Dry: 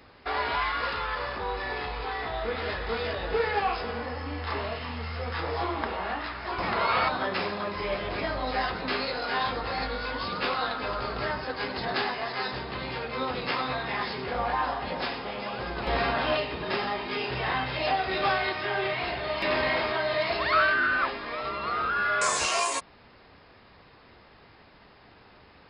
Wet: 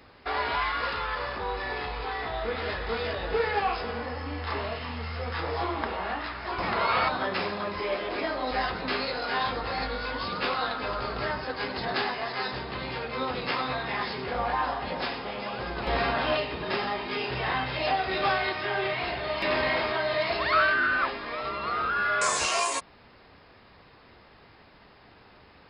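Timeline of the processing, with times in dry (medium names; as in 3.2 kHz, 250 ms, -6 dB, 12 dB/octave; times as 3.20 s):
7.80–8.51 s: resonant low shelf 200 Hz -10 dB, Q 1.5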